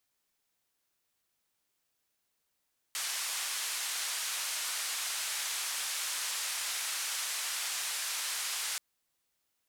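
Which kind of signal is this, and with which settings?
band-limited noise 1,100–10,000 Hz, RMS −35.5 dBFS 5.83 s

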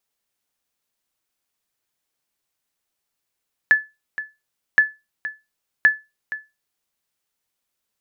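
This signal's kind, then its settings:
ping with an echo 1,730 Hz, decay 0.23 s, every 1.07 s, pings 3, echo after 0.47 s, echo −14.5 dB −5.5 dBFS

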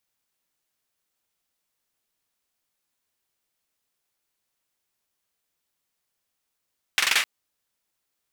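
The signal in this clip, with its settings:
synth clap length 0.26 s, bursts 5, apart 44 ms, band 2,200 Hz, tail 0.34 s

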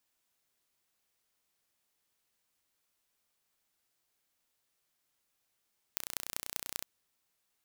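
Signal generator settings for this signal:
impulse train 30.4 per second, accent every 6, −5.5 dBFS 0.86 s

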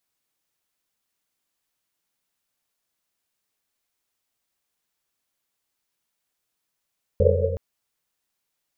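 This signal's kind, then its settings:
drum after Risset length 0.37 s, pitch 88 Hz, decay 2.62 s, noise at 500 Hz, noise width 120 Hz, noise 55%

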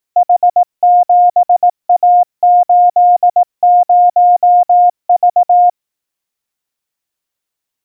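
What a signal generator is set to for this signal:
Morse code "H7A80V" 18 words per minute 712 Hz −4 dBFS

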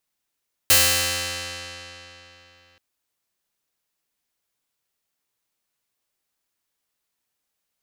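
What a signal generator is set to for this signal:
Karplus-Strong string F2, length 2.08 s, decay 3.43 s, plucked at 0.41, bright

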